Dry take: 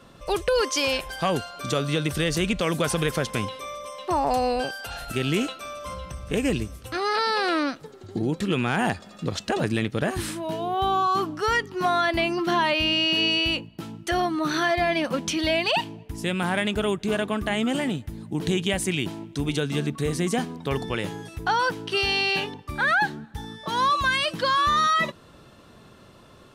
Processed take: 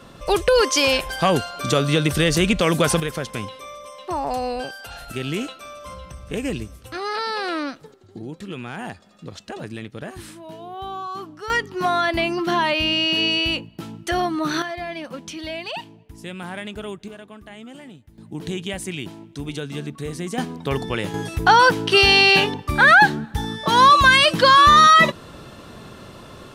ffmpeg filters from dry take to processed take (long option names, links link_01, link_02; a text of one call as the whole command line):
ffmpeg -i in.wav -af "asetnsamples=nb_out_samples=441:pad=0,asendcmd='3 volume volume -2dB;7.94 volume volume -8.5dB;11.5 volume volume 2dB;14.62 volume volume -7.5dB;17.08 volume volume -15dB;18.18 volume volume -4dB;20.38 volume volume 3dB;21.14 volume volume 10dB',volume=6dB" out.wav